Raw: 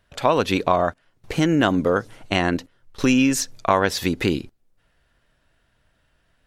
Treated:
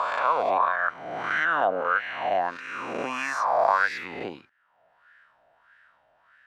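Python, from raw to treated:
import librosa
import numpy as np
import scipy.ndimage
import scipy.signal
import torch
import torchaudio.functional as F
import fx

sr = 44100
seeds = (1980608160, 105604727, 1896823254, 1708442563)

y = fx.spec_swells(x, sr, rise_s=1.84)
y = fx.peak_eq(y, sr, hz=360.0, db=-6.5, octaves=1.2)
y = fx.wah_lfo(y, sr, hz=1.6, low_hz=680.0, high_hz=1700.0, q=4.5)
y = fx.dynamic_eq(y, sr, hz=510.0, q=2.6, threshold_db=-43.0, ratio=4.0, max_db=5)
y = fx.band_squash(y, sr, depth_pct=40)
y = F.gain(torch.from_numpy(y), 2.5).numpy()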